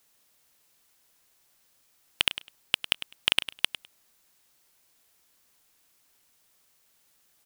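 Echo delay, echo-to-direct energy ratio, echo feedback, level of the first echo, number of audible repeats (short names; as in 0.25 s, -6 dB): 0.102 s, -13.0 dB, 16%, -13.0 dB, 2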